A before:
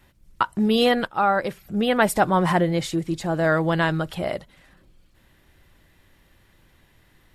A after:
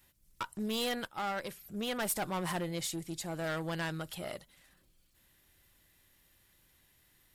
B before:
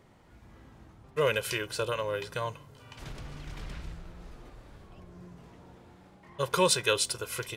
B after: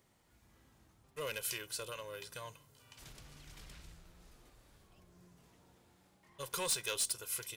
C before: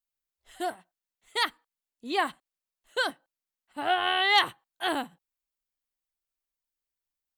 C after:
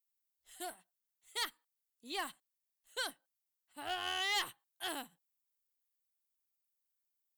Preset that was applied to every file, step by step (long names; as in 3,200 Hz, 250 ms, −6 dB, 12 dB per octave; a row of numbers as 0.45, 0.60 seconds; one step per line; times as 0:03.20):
one-sided soft clipper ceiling −20 dBFS
first-order pre-emphasis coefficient 0.8
hard clipping −28.5 dBFS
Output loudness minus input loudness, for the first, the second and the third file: −14.5, −8.5, −11.5 LU